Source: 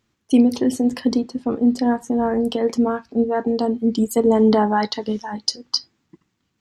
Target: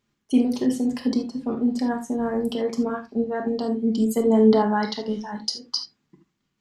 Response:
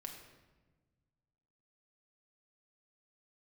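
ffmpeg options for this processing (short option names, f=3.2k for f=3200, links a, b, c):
-filter_complex "[0:a]asettb=1/sr,asplit=3[a][b][c];[a]atrim=end=1.794[d];[b]atrim=start=1.79:end=2.5,asetpts=PTS-STARTPTS,afade=t=in:d=0.004:c=qsin,afade=t=out:st=0.706:d=0.004:c=qsin,highshelf=f=10k:g=9.5[e];[c]atrim=start=2.496[f];[d][e]acrossfade=d=0.004:c1=hsin:c2=qsin[g];[g][f]acrossfade=d=0.004:c1=qsin:c2=hsin[h];[1:a]atrim=start_sample=2205,atrim=end_sample=3969[i];[h][i]afir=irnorm=-1:irlink=0"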